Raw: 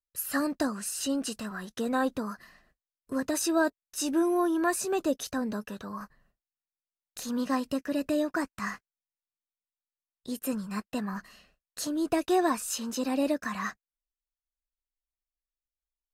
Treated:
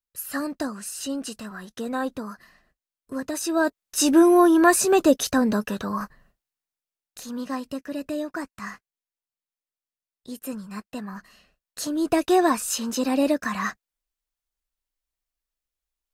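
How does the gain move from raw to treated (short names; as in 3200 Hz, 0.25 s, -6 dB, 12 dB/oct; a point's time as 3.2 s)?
3.41 s 0 dB
4.03 s +10.5 dB
5.97 s +10.5 dB
7.28 s -1.5 dB
11.18 s -1.5 dB
12.18 s +6 dB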